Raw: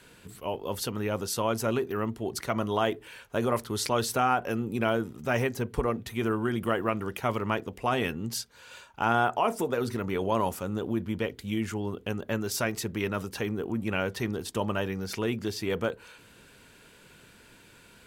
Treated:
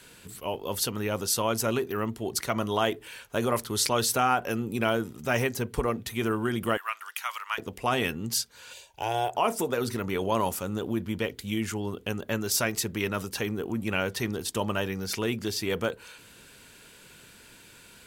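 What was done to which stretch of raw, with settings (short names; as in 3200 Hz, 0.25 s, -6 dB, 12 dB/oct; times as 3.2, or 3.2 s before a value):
6.77–7.58 HPF 1100 Hz 24 dB/oct
8.73–9.35 fixed phaser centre 540 Hz, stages 4
whole clip: high shelf 2900 Hz +7.5 dB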